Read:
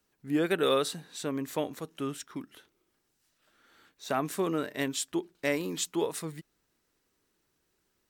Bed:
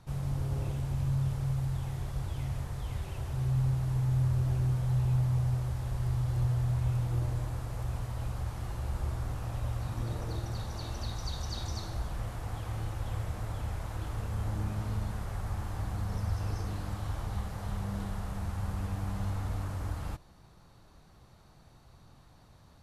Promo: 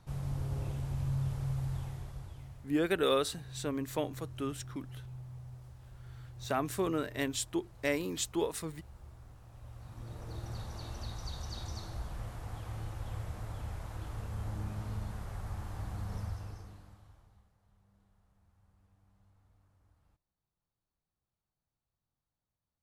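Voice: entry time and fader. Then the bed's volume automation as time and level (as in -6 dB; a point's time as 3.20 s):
2.40 s, -2.5 dB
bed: 1.78 s -3.5 dB
2.75 s -18.5 dB
9.49 s -18.5 dB
10.51 s -5 dB
16.21 s -5 dB
17.58 s -34 dB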